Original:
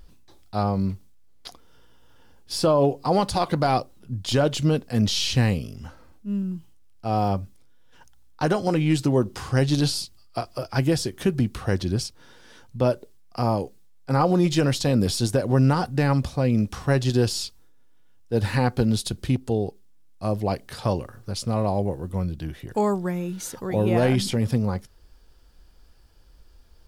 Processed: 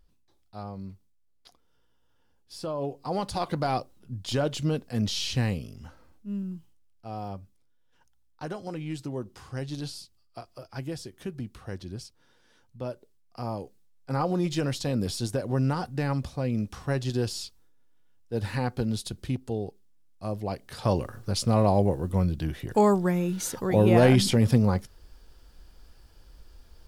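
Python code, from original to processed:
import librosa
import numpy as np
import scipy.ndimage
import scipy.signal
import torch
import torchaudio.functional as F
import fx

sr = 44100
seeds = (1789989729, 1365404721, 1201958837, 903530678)

y = fx.gain(x, sr, db=fx.line((2.54, -15.0), (3.44, -6.0), (6.52, -6.0), (7.15, -13.5), (12.89, -13.5), (14.11, -7.0), (20.6, -7.0), (21.03, 2.0)))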